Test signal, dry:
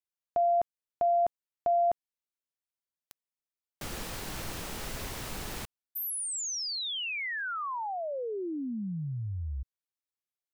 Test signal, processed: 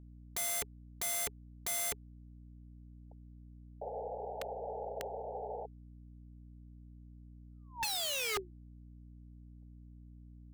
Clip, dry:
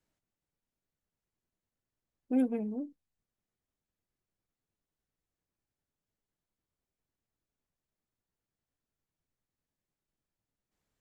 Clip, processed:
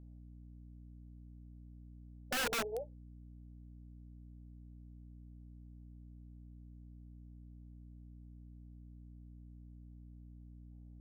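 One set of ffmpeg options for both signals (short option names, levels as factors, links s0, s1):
-af "asuperpass=centerf=600:order=20:qfactor=1.3,aeval=exprs='val(0)+0.00112*(sin(2*PI*60*n/s)+sin(2*PI*2*60*n/s)/2+sin(2*PI*3*60*n/s)/3+sin(2*PI*4*60*n/s)/4+sin(2*PI*5*60*n/s)/5)':c=same,aeval=exprs='(mod(70.8*val(0)+1,2)-1)/70.8':c=same,volume=2.24"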